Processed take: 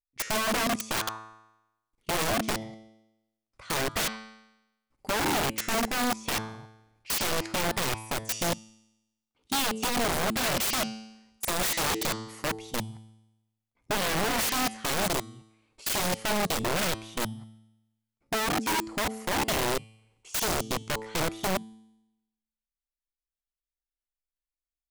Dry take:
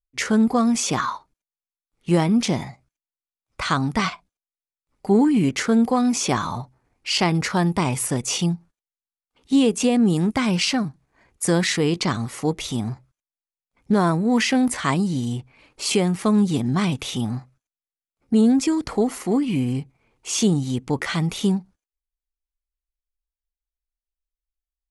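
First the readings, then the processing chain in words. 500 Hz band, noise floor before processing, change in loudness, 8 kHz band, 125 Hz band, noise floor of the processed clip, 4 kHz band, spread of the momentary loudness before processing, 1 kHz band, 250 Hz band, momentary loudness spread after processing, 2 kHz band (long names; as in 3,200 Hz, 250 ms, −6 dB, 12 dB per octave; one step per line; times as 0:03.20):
−7.0 dB, below −85 dBFS, −7.0 dB, −3.0 dB, −13.5 dB, below −85 dBFS, −2.5 dB, 10 LU, −3.0 dB, −15.5 dB, 9 LU, −1.5 dB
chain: output level in coarse steps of 24 dB
tuned comb filter 110 Hz, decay 0.92 s, harmonics all, mix 70%
wrap-around overflow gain 31 dB
level +8.5 dB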